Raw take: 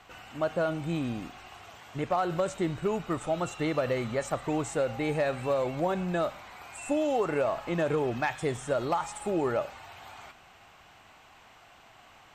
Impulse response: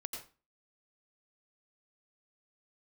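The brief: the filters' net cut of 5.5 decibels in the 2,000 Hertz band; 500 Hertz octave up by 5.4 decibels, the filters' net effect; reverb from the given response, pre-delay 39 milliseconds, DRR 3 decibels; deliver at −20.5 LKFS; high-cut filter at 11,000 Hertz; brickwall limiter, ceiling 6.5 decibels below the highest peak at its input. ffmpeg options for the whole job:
-filter_complex "[0:a]lowpass=11000,equalizer=frequency=500:width_type=o:gain=7,equalizer=frequency=2000:width_type=o:gain=-8,alimiter=limit=-19dB:level=0:latency=1,asplit=2[link_01][link_02];[1:a]atrim=start_sample=2205,adelay=39[link_03];[link_02][link_03]afir=irnorm=-1:irlink=0,volume=-1.5dB[link_04];[link_01][link_04]amix=inputs=2:normalize=0,volume=6.5dB"

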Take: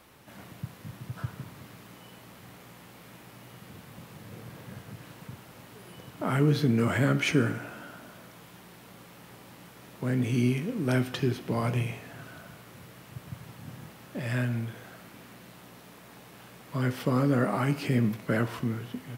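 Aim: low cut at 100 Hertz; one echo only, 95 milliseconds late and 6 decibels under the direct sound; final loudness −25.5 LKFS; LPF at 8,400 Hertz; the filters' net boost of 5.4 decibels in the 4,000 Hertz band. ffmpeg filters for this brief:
ffmpeg -i in.wav -af "highpass=100,lowpass=8400,equalizer=frequency=4000:width_type=o:gain=7.5,aecho=1:1:95:0.501,volume=2dB" out.wav

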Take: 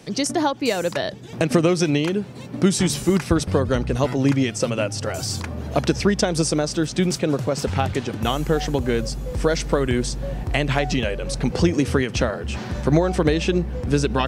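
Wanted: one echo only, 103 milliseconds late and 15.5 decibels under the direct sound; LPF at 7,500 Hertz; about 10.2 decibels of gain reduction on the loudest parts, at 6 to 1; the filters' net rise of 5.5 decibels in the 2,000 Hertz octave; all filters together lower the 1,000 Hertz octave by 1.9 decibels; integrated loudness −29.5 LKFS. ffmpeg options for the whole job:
ffmpeg -i in.wav -af "lowpass=7500,equalizer=frequency=1000:width_type=o:gain=-5,equalizer=frequency=2000:width_type=o:gain=8.5,acompressor=threshold=-24dB:ratio=6,aecho=1:1:103:0.168,volume=-1dB" out.wav

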